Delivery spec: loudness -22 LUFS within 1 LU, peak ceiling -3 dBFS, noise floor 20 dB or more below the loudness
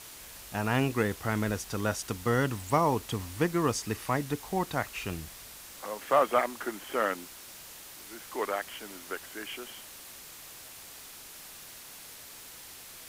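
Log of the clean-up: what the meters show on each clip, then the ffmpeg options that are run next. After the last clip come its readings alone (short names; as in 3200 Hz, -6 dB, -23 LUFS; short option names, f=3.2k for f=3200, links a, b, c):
noise floor -48 dBFS; noise floor target -51 dBFS; loudness -31.0 LUFS; peak -11.0 dBFS; loudness target -22.0 LUFS
-> -af "afftdn=nr=6:nf=-48"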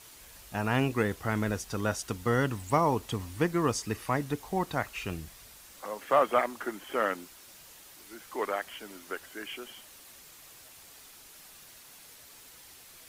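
noise floor -53 dBFS; loudness -31.0 LUFS; peak -11.0 dBFS; loudness target -22.0 LUFS
-> -af "volume=9dB,alimiter=limit=-3dB:level=0:latency=1"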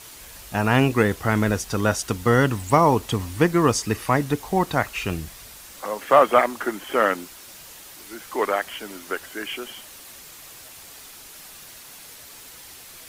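loudness -22.0 LUFS; peak -3.0 dBFS; noise floor -44 dBFS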